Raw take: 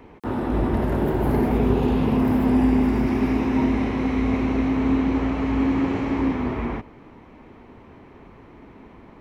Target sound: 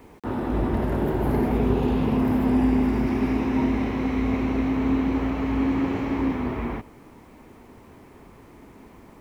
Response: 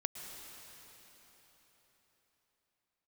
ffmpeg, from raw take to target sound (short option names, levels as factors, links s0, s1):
-af "acrusher=bits=9:mix=0:aa=0.000001,volume=0.794"